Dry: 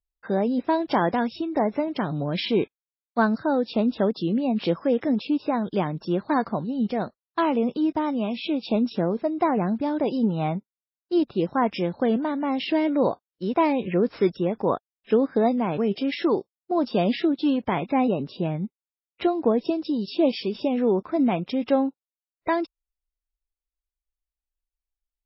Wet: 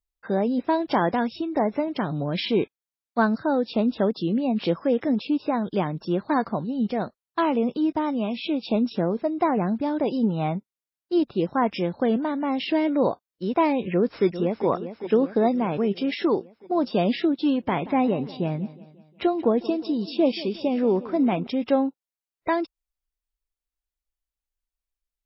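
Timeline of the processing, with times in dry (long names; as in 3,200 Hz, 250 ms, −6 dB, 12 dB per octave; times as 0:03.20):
0:13.92–0:14.66: delay throw 400 ms, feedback 65%, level −11 dB
0:17.49–0:21.47: repeating echo 180 ms, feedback 51%, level −17.5 dB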